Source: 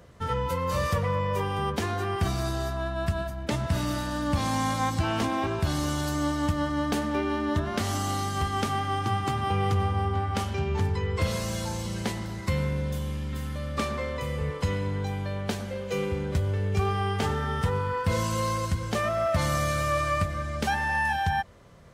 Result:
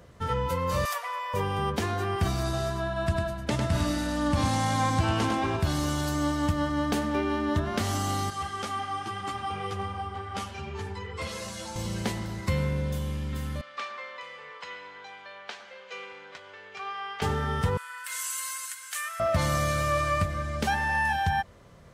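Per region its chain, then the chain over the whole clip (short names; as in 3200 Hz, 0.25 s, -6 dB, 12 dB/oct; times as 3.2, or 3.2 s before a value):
0.85–1.34 elliptic high-pass 680 Hz, stop band 80 dB + high shelf 8900 Hz +12 dB
2.43–5.57 LPF 12000 Hz 24 dB/oct + echo 0.101 s -5 dB
8.3–11.76 steep low-pass 12000 Hz + low shelf 300 Hz -10.5 dB + ensemble effect
13.61–17.22 HPF 1100 Hz + air absorption 150 m
17.77–19.2 Chebyshev high-pass 1500 Hz, order 3 + resonant high shelf 6600 Hz +9 dB, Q 1.5
whole clip: dry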